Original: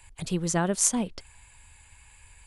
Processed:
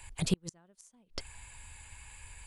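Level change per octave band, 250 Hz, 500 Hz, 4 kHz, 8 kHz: -8.5, -11.5, -4.0, -17.0 dB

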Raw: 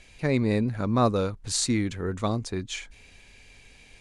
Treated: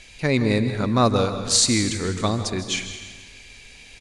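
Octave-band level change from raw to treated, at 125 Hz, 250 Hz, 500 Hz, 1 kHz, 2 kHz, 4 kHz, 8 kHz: +4.0, +4.0, +4.0, +5.0, +7.5, +10.5, +9.5 dB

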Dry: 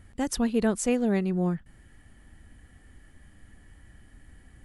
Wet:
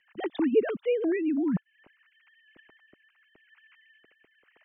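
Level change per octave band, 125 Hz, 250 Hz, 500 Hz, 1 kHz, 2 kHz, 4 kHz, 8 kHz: -8.5 dB, -2.0 dB, +2.5 dB, -6.0 dB, -1.5 dB, n/a, under -40 dB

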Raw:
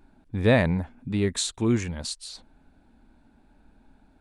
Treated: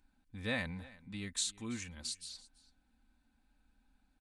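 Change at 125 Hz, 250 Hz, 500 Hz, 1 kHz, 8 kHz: -19.5, -17.5, -21.0, -16.5, -6.5 dB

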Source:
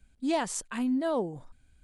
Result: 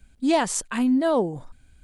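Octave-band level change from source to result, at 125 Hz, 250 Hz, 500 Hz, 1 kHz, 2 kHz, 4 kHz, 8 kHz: +7.5, +7.5, +7.5, +7.5, +7.5, +7.5, +7.5 dB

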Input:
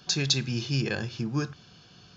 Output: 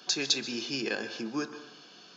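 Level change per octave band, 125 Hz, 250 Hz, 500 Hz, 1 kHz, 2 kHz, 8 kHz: -21.0 dB, -3.5 dB, -0.5 dB, 0.0 dB, -0.5 dB, n/a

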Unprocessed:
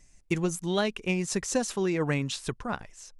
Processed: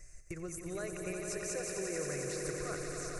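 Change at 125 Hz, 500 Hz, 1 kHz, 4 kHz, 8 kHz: -12.0, -7.5, -11.5, -12.5, -4.0 dB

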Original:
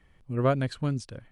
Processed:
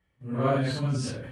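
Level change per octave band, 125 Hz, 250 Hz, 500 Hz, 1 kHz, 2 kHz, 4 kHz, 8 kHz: +1.0, +1.0, 0.0, +1.5, +2.0, +5.5, +7.0 dB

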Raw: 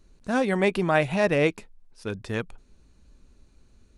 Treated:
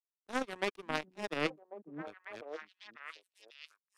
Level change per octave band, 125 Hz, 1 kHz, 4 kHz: -21.0, -11.0, -6.0 dB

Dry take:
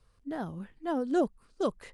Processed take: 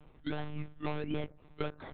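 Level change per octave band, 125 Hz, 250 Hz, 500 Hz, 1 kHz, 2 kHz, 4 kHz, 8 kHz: +5.5 dB, -7.5 dB, -8.5 dB, -7.0 dB, +0.5 dB, +2.0 dB, n/a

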